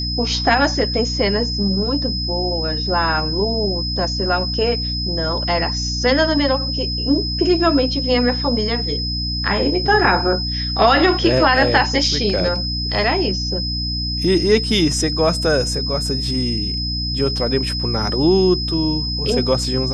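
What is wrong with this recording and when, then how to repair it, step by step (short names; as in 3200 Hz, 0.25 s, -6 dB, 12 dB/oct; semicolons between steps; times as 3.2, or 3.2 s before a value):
hum 60 Hz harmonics 5 -25 dBFS
tone 5100 Hz -23 dBFS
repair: de-hum 60 Hz, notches 5; notch 5100 Hz, Q 30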